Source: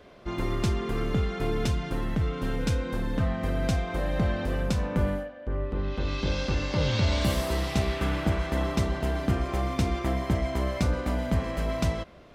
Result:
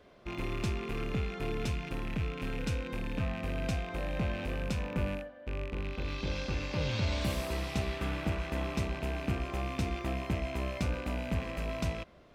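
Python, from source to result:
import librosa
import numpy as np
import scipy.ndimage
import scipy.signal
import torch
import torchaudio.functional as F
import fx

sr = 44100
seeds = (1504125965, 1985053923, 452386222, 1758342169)

y = fx.rattle_buzz(x, sr, strikes_db=-35.0, level_db=-25.0)
y = y * librosa.db_to_amplitude(-7.0)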